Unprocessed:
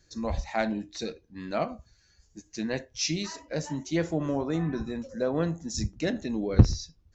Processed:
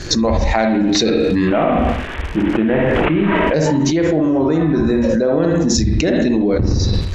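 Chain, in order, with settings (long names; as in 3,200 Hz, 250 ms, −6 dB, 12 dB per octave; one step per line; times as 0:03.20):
0:01.47–0:03.54: variable-slope delta modulation 16 kbit/s
parametric band 380 Hz +4 dB 0.94 octaves
surface crackle 190 per second −55 dBFS
high-frequency loss of the air 73 metres
convolution reverb RT60 0.50 s, pre-delay 44 ms, DRR 2 dB
envelope flattener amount 100%
level −4.5 dB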